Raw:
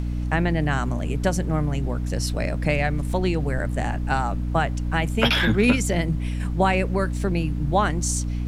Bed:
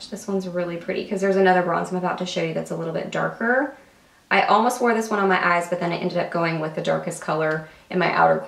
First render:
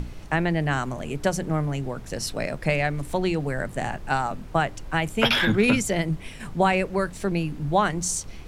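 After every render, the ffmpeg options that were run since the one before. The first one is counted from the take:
ffmpeg -i in.wav -af "bandreject=frequency=60:width_type=h:width=6,bandreject=frequency=120:width_type=h:width=6,bandreject=frequency=180:width_type=h:width=6,bandreject=frequency=240:width_type=h:width=6,bandreject=frequency=300:width_type=h:width=6" out.wav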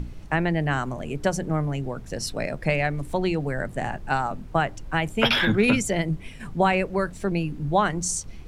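ffmpeg -i in.wav -af "afftdn=noise_reduction=6:noise_floor=-40" out.wav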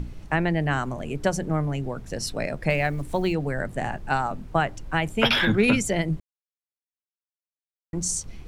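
ffmpeg -i in.wav -filter_complex "[0:a]asettb=1/sr,asplit=3[link_01][link_02][link_03];[link_01]atrim=end=2.704[link_04];[link_02]atrim=start=2.7:end=3.33,asetpts=PTS-STARTPTS,afade=type=in:duration=0.004:curve=qsin,afade=type=out:start_time=0.626:duration=0.004:curve=qsin,acrusher=bits=9:mode=log:mix=0:aa=0.000001[link_05];[link_03]atrim=start=3.326[link_06];[link_04][link_05]acrossfade=duration=0.004:curve1=hsin:curve2=qsin[link_07];[link_07][link_06]acrossfade=duration=0.004:curve1=qsin:curve2=hsin,asplit=3[link_08][link_09][link_10];[link_08]atrim=end=6.2,asetpts=PTS-STARTPTS,afade=type=out:start_time=6.196:duration=0.004:curve=hsin[link_11];[link_09]atrim=start=6.2:end=7.93,asetpts=PTS-STARTPTS,volume=0[link_12];[link_10]atrim=start=7.93,asetpts=PTS-STARTPTS,afade=type=in:duration=0.004:curve=hsin[link_13];[link_11][link_12][link_13]concat=n=3:v=0:a=1" out.wav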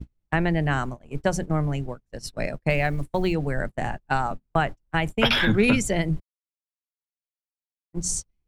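ffmpeg -i in.wav -af "agate=range=-40dB:threshold=-28dB:ratio=16:detection=peak,lowshelf=frequency=69:gain=6.5" out.wav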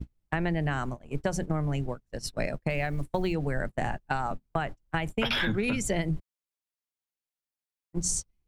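ffmpeg -i in.wav -af "alimiter=limit=-12dB:level=0:latency=1:release=250,acompressor=threshold=-24dB:ratio=6" out.wav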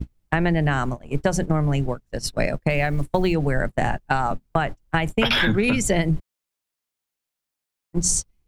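ffmpeg -i in.wav -af "volume=8dB" out.wav

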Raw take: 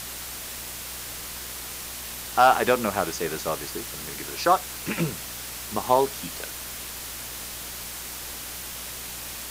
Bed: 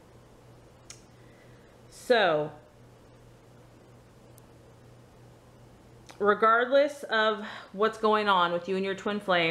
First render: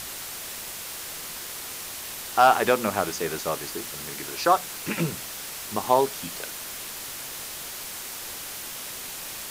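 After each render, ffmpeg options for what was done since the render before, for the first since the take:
ffmpeg -i in.wav -af "bandreject=frequency=60:width_type=h:width=4,bandreject=frequency=120:width_type=h:width=4,bandreject=frequency=180:width_type=h:width=4,bandreject=frequency=240:width_type=h:width=4,bandreject=frequency=300:width_type=h:width=4" out.wav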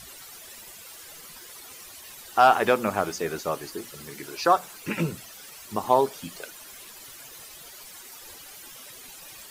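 ffmpeg -i in.wav -af "afftdn=noise_reduction=13:noise_floor=-37" out.wav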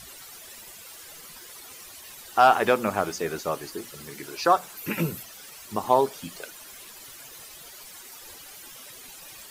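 ffmpeg -i in.wav -filter_complex "[0:a]asettb=1/sr,asplit=3[link_01][link_02][link_03];[link_01]atrim=end=4.774[link_04];[link_02]atrim=start=4.77:end=5.23,asetpts=PTS-STARTPTS,afade=type=in:duration=0.004:curve=qsin,afade=type=out:start_time=0.456:duration=0.004:curve=qsin,equalizer=frequency=13000:width_type=o:width=0.33:gain=12.5[link_05];[link_03]atrim=start=5.226[link_06];[link_04][link_05]acrossfade=duration=0.004:curve1=hsin:curve2=qsin[link_07];[link_07][link_06]acrossfade=duration=0.004:curve1=qsin:curve2=hsin" out.wav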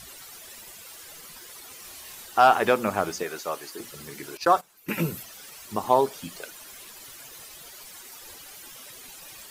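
ffmpeg -i in.wav -filter_complex "[0:a]asettb=1/sr,asplit=3[link_01][link_02][link_03];[link_01]atrim=end=1.814[link_04];[link_02]atrim=start=1.81:end=2.26,asetpts=PTS-STARTPTS,afade=type=in:duration=0.004:curve=qsin,afade=type=out:start_time=0.446:duration=0.004:curve=qsin,asplit=2[link_05][link_06];[link_06]adelay=31,volume=-4dB[link_07];[link_05][link_07]amix=inputs=2:normalize=0,atrim=end_sample=19845[link_08];[link_03]atrim=start=2.256[link_09];[link_04][link_08]acrossfade=duration=0.004:curve1=hsin:curve2=qsin[link_10];[link_10][link_09]acrossfade=duration=0.004:curve1=qsin:curve2=hsin,asettb=1/sr,asplit=3[link_11][link_12][link_13];[link_11]atrim=end=3.234[link_14];[link_12]atrim=start=3.23:end=3.8,asetpts=PTS-STARTPTS,afade=type=in:duration=0.004:curve=qsin,afade=type=out:start_time=0.566:duration=0.004:curve=qsin,highpass=frequency=560:poles=1[link_15];[link_13]atrim=start=3.796[link_16];[link_14][link_15]acrossfade=duration=0.004:curve1=hsin:curve2=qsin[link_17];[link_17][link_16]acrossfade=duration=0.004:curve1=qsin:curve2=hsin,asettb=1/sr,asplit=3[link_18][link_19][link_20];[link_18]atrim=end=4.374[link_21];[link_19]atrim=start=4.37:end=4.92,asetpts=PTS-STARTPTS,afade=type=in:duration=0.004:curve=qsin,afade=type=out:start_time=0.546:duration=0.004:curve=qsin,agate=range=-16dB:threshold=-33dB:ratio=16:release=100:detection=peak[link_22];[link_20]atrim=start=4.916[link_23];[link_21][link_22]acrossfade=duration=0.004:curve1=hsin:curve2=qsin[link_24];[link_24][link_23]acrossfade=duration=0.004:curve1=qsin:curve2=hsin" out.wav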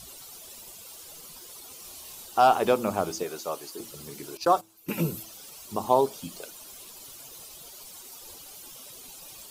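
ffmpeg -i in.wav -af "equalizer=frequency=1800:width=1.6:gain=-11.5,bandreject=frequency=108.8:width_type=h:width=4,bandreject=frequency=217.6:width_type=h:width=4,bandreject=frequency=326.4:width_type=h:width=4" out.wav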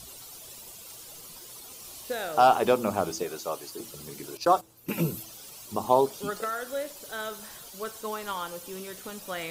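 ffmpeg -i in.wav -i bed.wav -filter_complex "[1:a]volume=-10.5dB[link_01];[0:a][link_01]amix=inputs=2:normalize=0" out.wav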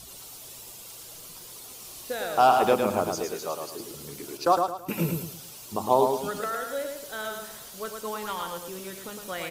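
ffmpeg -i in.wav -af "aecho=1:1:109|218|327|436:0.562|0.186|0.0612|0.0202" out.wav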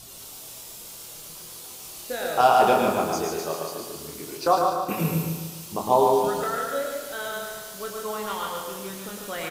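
ffmpeg -i in.wav -filter_complex "[0:a]asplit=2[link_01][link_02];[link_02]adelay=25,volume=-5dB[link_03];[link_01][link_03]amix=inputs=2:normalize=0,asplit=2[link_04][link_05];[link_05]aecho=0:1:146|292|438|584|730|876:0.596|0.28|0.132|0.0618|0.0291|0.0137[link_06];[link_04][link_06]amix=inputs=2:normalize=0" out.wav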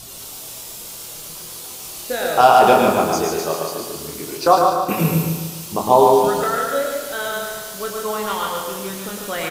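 ffmpeg -i in.wav -af "volume=7dB,alimiter=limit=-1dB:level=0:latency=1" out.wav

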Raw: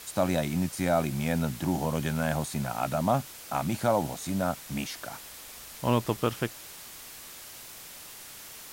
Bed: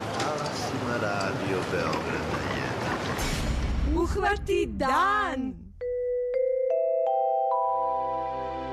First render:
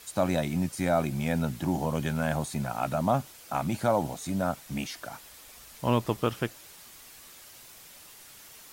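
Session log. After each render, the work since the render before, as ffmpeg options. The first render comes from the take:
ffmpeg -i in.wav -af "afftdn=noise_reduction=6:noise_floor=-46" out.wav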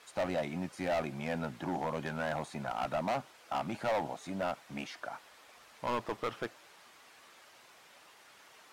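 ffmpeg -i in.wav -af "bandpass=frequency=1000:width_type=q:width=0.58:csg=0,asoftclip=type=hard:threshold=-28dB" out.wav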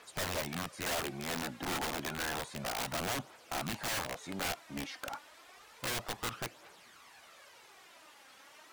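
ffmpeg -i in.wav -af "aphaser=in_gain=1:out_gain=1:delay=3.9:decay=0.46:speed=0.3:type=triangular,aeval=exprs='(mod(31.6*val(0)+1,2)-1)/31.6':channel_layout=same" out.wav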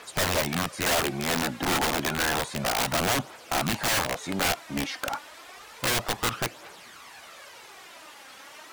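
ffmpeg -i in.wav -af "volume=10.5dB" out.wav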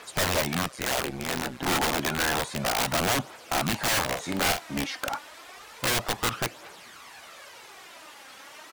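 ffmpeg -i in.wav -filter_complex "[0:a]asettb=1/sr,asplit=3[link_01][link_02][link_03];[link_01]atrim=end=0.684[link_04];[link_02]atrim=start=0.68:end=1.65,asetpts=PTS-STARTPTS,afade=type=in:duration=0.004:curve=qsin,afade=type=out:start_time=0.966:duration=0.004:curve=qsin,tremolo=f=130:d=0.824[link_05];[link_03]atrim=start=1.646[link_06];[link_04][link_05]acrossfade=duration=0.004:curve1=hsin:curve2=qsin[link_07];[link_07][link_06]acrossfade=duration=0.004:curve1=qsin:curve2=hsin,asplit=3[link_08][link_09][link_10];[link_08]afade=type=out:start_time=4.07:duration=0.02[link_11];[link_09]asplit=2[link_12][link_13];[link_13]adelay=45,volume=-7dB[link_14];[link_12][link_14]amix=inputs=2:normalize=0,afade=type=in:start_time=4.07:duration=0.02,afade=type=out:start_time=4.77:duration=0.02[link_15];[link_10]afade=type=in:start_time=4.77:duration=0.02[link_16];[link_11][link_15][link_16]amix=inputs=3:normalize=0" out.wav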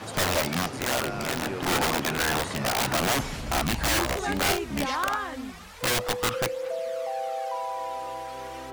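ffmpeg -i in.wav -i bed.wav -filter_complex "[1:a]volume=-6dB[link_01];[0:a][link_01]amix=inputs=2:normalize=0" out.wav

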